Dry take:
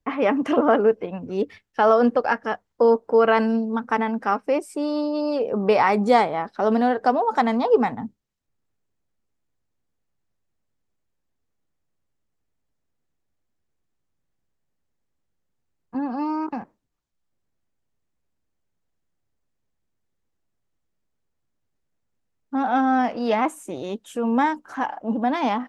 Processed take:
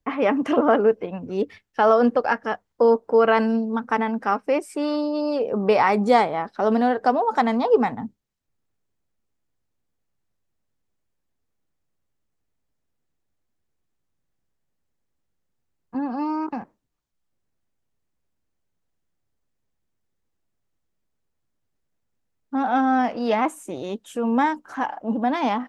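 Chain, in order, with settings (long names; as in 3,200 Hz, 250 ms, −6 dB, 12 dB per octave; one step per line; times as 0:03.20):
0:04.48–0:04.95: parametric band 1,900 Hz +2.5 dB → +13.5 dB 1.2 octaves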